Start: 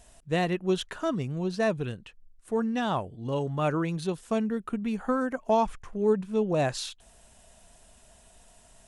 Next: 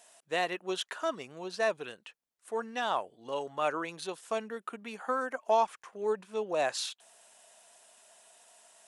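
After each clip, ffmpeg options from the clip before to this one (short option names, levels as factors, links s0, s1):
-af "highpass=580"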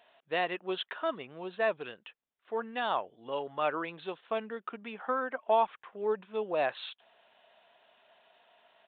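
-af "aresample=8000,aresample=44100"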